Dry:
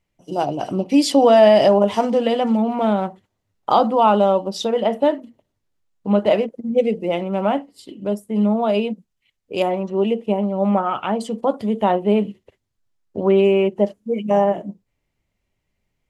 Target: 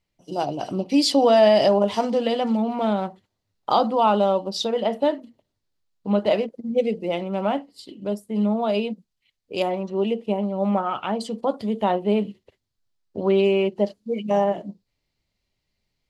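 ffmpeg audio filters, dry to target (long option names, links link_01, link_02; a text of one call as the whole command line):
ffmpeg -i in.wav -af "asetnsamples=nb_out_samples=441:pad=0,asendcmd='13.21 equalizer g 14',equalizer=frequency=4400:width=2:gain=8,volume=-4dB" out.wav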